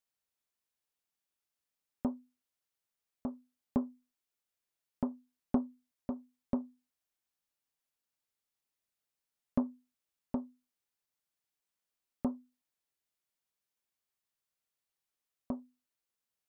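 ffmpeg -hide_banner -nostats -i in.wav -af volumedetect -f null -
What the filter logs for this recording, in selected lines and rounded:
mean_volume: -43.9 dB
max_volume: -16.5 dB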